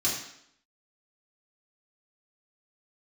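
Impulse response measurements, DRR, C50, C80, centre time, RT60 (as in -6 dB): -6.5 dB, 4.0 dB, 7.0 dB, 42 ms, 0.70 s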